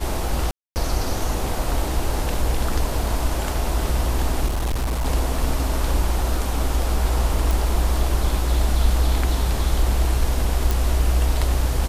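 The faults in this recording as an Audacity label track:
0.510000	0.760000	dropout 249 ms
4.460000	5.060000	clipped -19 dBFS
7.510000	7.510000	pop
10.710000	10.710000	pop

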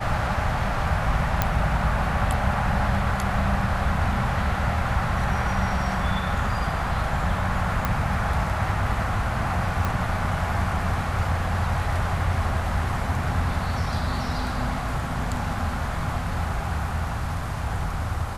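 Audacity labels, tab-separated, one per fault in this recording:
1.420000	1.420000	pop -6 dBFS
7.850000	7.850000	pop -10 dBFS
9.850000	9.850000	pop -12 dBFS

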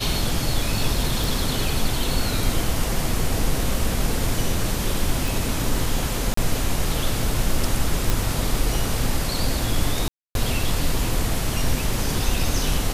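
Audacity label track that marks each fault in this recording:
1.240000	1.240000	pop
5.280000	5.280000	pop
6.340000	6.370000	dropout 34 ms
8.100000	8.100000	pop
10.080000	10.350000	dropout 272 ms

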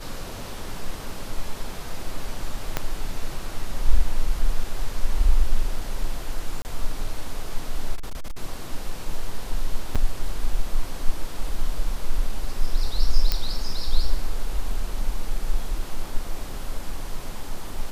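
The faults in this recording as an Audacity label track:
2.770000	2.770000	pop -8 dBFS
6.620000	6.650000	dropout 29 ms
7.950000	8.380000	clipped -25 dBFS
9.950000	9.960000	dropout 6 ms
13.320000	13.320000	pop -7 dBFS

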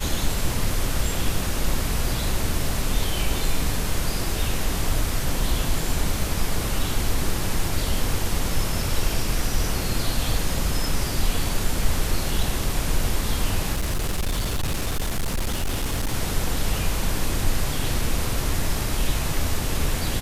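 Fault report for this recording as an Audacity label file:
13.730000	16.140000	clipped -20 dBFS

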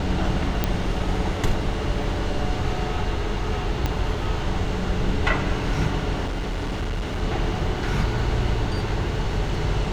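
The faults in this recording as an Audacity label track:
0.640000	0.640000	pop -7 dBFS
3.860000	3.860000	pop -9 dBFS
6.250000	7.230000	clipped -23 dBFS

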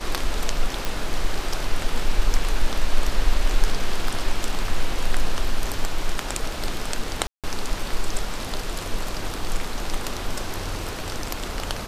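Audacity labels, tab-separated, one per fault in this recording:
0.850000	0.850000	pop
7.270000	7.440000	dropout 167 ms

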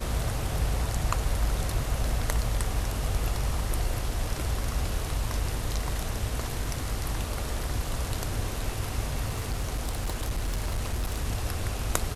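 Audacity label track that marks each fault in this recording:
9.260000	11.250000	clipped -24.5 dBFS

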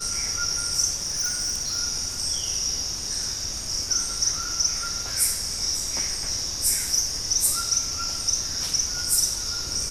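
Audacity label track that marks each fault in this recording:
1.020000	1.770000	clipped -21.5 dBFS

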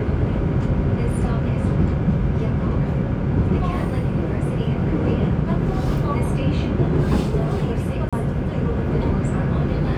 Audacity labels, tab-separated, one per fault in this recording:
8.090000	8.130000	dropout 36 ms

